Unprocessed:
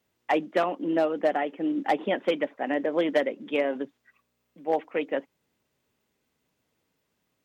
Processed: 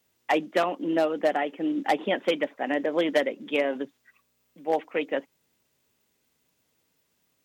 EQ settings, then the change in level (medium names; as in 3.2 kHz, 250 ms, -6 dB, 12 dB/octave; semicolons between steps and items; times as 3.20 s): treble shelf 3.5 kHz +9 dB; 0.0 dB